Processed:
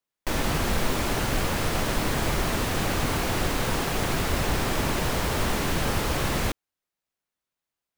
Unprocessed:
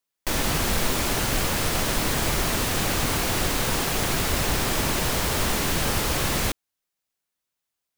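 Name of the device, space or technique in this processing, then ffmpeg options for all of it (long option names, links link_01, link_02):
behind a face mask: -af "highshelf=frequency=3200:gain=-7.5"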